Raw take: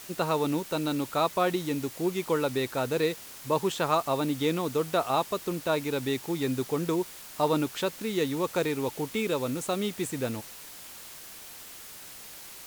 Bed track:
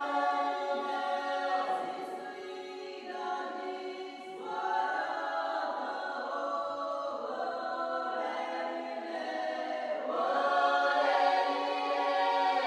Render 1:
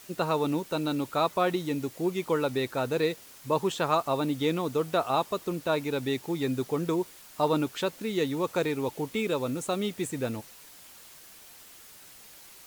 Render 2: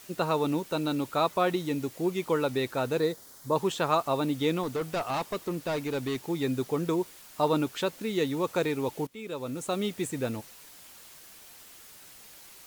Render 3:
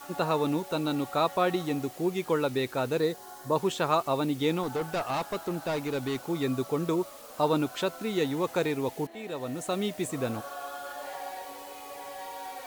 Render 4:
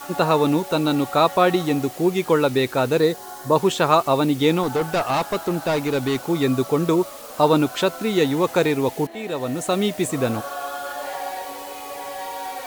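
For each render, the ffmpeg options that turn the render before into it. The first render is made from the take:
ffmpeg -i in.wav -af "afftdn=noise_reduction=6:noise_floor=-45" out.wav
ffmpeg -i in.wav -filter_complex "[0:a]asettb=1/sr,asplit=3[link_01][link_02][link_03];[link_01]atrim=end=2.994[link_04];[link_02]atrim=start=2.99:end=3.56,asetpts=PTS-STARTPTS,afade=type=in:duration=0.004:curve=qsin,afade=type=out:start_time=0.566:duration=0.004:curve=qsin,equalizer=frequency=2600:width_type=o:width=0.54:gain=-14.5[link_05];[link_03]atrim=start=3.556[link_06];[link_04][link_05]acrossfade=duration=0.004:curve1=hsin:curve2=qsin[link_07];[link_07][link_06]acrossfade=duration=0.004:curve1=qsin:curve2=hsin,asettb=1/sr,asplit=3[link_08][link_09][link_10];[link_08]atrim=end=4.634[link_11];[link_09]atrim=start=4.63:end=6.3,asetpts=PTS-STARTPTS,afade=type=in:duration=0.004:curve=qsin,afade=type=out:start_time=1.666:duration=0.004:curve=qsin,volume=26.5dB,asoftclip=hard,volume=-26.5dB[link_12];[link_10]atrim=start=6.296[link_13];[link_11][link_12]acrossfade=duration=0.004:curve1=hsin:curve2=qsin[link_14];[link_14][link_13]acrossfade=duration=0.004:curve1=qsin:curve2=hsin,asplit=2[link_15][link_16];[link_15]atrim=end=9.07,asetpts=PTS-STARTPTS,afade=type=out:start_time=9.066:duration=0.004:curve=hsin:silence=0.0944061[link_17];[link_16]atrim=start=9.07,asetpts=PTS-STARTPTS,afade=type=in:duration=0.72:silence=0.0944061[link_18];[link_17][link_18]concat=n=2:v=0:a=1" out.wav
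ffmpeg -i in.wav -i bed.wav -filter_complex "[1:a]volume=-12dB[link_01];[0:a][link_01]amix=inputs=2:normalize=0" out.wav
ffmpeg -i in.wav -af "volume=9dB" out.wav

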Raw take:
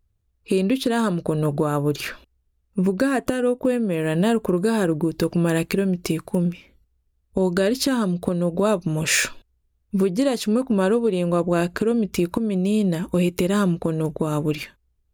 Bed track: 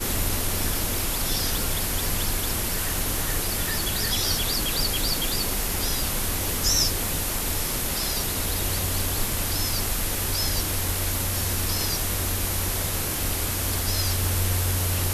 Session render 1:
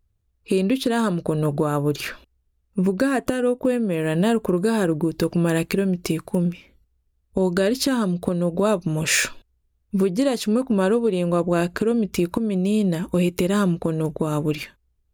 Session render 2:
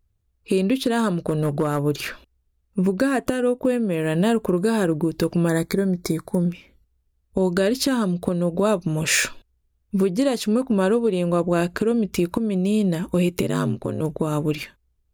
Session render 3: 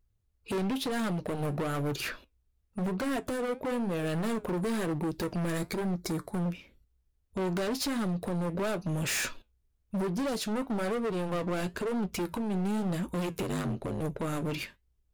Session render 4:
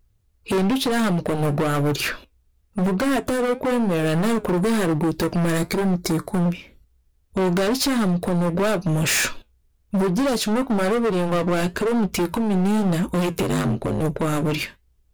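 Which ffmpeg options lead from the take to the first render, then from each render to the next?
ffmpeg -i in.wav -af anull out.wav
ffmpeg -i in.wav -filter_complex "[0:a]asettb=1/sr,asplit=3[link_01][link_02][link_03];[link_01]atrim=end=1.244[link_04];[link_02]atrim=start=1.24:end=1.83,asetpts=PTS-STARTPTS,afade=type=in:duration=0.004:curve=qsin,afade=type=out:start_time=0.586:duration=0.004:curve=qsin,asoftclip=type=hard:threshold=-14.5dB[link_05];[link_03]atrim=start=1.826[link_06];[link_04][link_05]acrossfade=duration=0.004:curve1=hsin:curve2=qsin[link_07];[link_07][link_06]acrossfade=duration=0.004:curve1=qsin:curve2=hsin,asettb=1/sr,asplit=3[link_08][link_09][link_10];[link_08]atrim=end=5.484[link_11];[link_09]atrim=start=5.48:end=6.48,asetpts=PTS-STARTPTS,afade=type=in:duration=0.004:curve=qsin,afade=type=out:start_time=0.996:duration=0.004:curve=qsin,asuperstop=centerf=2800:order=8:qfactor=2.5[link_12];[link_10]atrim=start=6.476[link_13];[link_11][link_12]acrossfade=duration=0.004:curve1=hsin:curve2=qsin[link_14];[link_14][link_13]acrossfade=duration=0.004:curve1=qsin:curve2=hsin,asplit=3[link_15][link_16][link_17];[link_15]afade=type=out:start_time=13.41:duration=0.02[link_18];[link_16]aeval=exprs='val(0)*sin(2*PI*48*n/s)':channel_layout=same,afade=type=in:start_time=13.41:duration=0.02,afade=type=out:start_time=14:duration=0.02[link_19];[link_17]afade=type=in:start_time=14:duration=0.02[link_20];[link_18][link_19][link_20]amix=inputs=3:normalize=0" out.wav
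ffmpeg -i in.wav -af "volume=24.5dB,asoftclip=hard,volume=-24.5dB,flanger=delay=5.1:depth=6.5:regen=-71:speed=1:shape=triangular" out.wav
ffmpeg -i in.wav -af "volume=10.5dB" out.wav

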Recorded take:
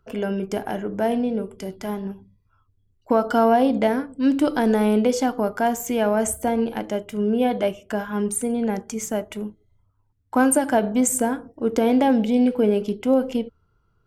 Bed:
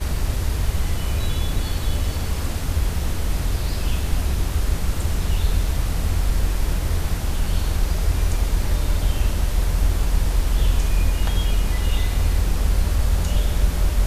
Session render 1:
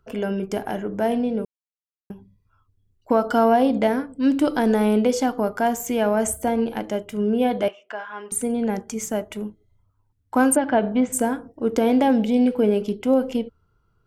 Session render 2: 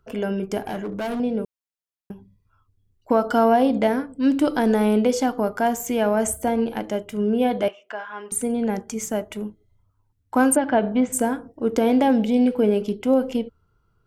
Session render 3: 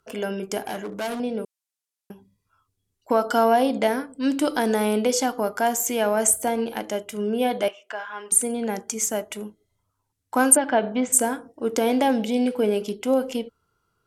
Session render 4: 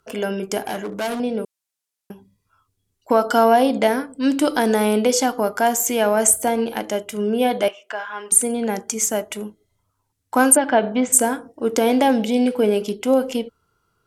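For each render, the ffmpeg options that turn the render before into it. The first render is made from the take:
ffmpeg -i in.wav -filter_complex "[0:a]asettb=1/sr,asplit=3[link_01][link_02][link_03];[link_01]atrim=end=7.684[link_04];[link_02]atrim=start=7.68:end=8.32,asetpts=PTS-STARTPTS,afade=type=in:duration=0.004:curve=qsin,afade=type=out:start_time=0.636:duration=0.004:curve=qsin,highpass=790,lowpass=3200[link_05];[link_03]atrim=start=8.316[link_06];[link_04][link_05]acrossfade=duration=0.004:curve1=hsin:curve2=qsin[link_07];[link_07][link_06]acrossfade=duration=0.004:curve1=qsin:curve2=hsin,asplit=3[link_08][link_09][link_10];[link_08]afade=type=out:start_time=10.55:duration=0.02[link_11];[link_09]lowpass=frequency=3700:width=0.5412,lowpass=frequency=3700:width=1.3066,afade=type=in:start_time=10.55:duration=0.02,afade=type=out:start_time=11.12:duration=0.02[link_12];[link_10]afade=type=in:start_time=11.12:duration=0.02[link_13];[link_11][link_12][link_13]amix=inputs=3:normalize=0,asplit=3[link_14][link_15][link_16];[link_14]atrim=end=1.45,asetpts=PTS-STARTPTS,afade=type=out:start_time=1.446:duration=0.004:curve=hsin[link_17];[link_15]atrim=start=1.45:end=2.1,asetpts=PTS-STARTPTS,volume=0[link_18];[link_16]atrim=start=2.1,asetpts=PTS-STARTPTS,afade=type=in:duration=0.004:curve=hsin[link_19];[link_17][link_18][link_19]concat=n=3:v=0:a=1" out.wav
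ffmpeg -i in.wav -filter_complex "[0:a]asettb=1/sr,asplit=3[link_01][link_02][link_03];[link_01]atrim=end=0.654[link_04];[link_02]atrim=start=0.65:end=1.2,asetpts=PTS-STARTPTS,afade=type=in:duration=0.004:curve=qsin,afade=type=out:start_time=0.546:duration=0.004:curve=qsin,volume=24.5dB,asoftclip=hard,volume=-24.5dB[link_05];[link_03]atrim=start=1.196[link_06];[link_04][link_05]acrossfade=duration=0.004:curve1=hsin:curve2=qsin[link_07];[link_07][link_06]acrossfade=duration=0.004:curve1=qsin:curve2=hsin" out.wav
ffmpeg -i in.wav -af "lowpass=9300,aemphasis=mode=production:type=bsi" out.wav
ffmpeg -i in.wav -af "volume=4dB,alimiter=limit=-1dB:level=0:latency=1" out.wav

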